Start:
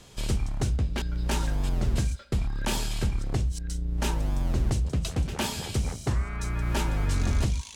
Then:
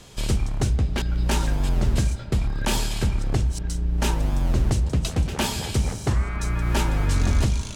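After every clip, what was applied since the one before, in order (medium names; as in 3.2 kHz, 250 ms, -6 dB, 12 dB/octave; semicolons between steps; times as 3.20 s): reverberation RT60 5.5 s, pre-delay 45 ms, DRR 14 dB; trim +4.5 dB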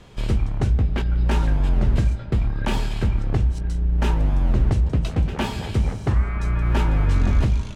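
tone controls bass +2 dB, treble -14 dB; doubling 19 ms -12 dB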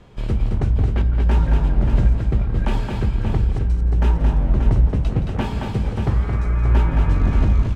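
treble shelf 2.6 kHz -9 dB; on a send: multi-tap echo 171/221/583 ms -14/-5/-7.5 dB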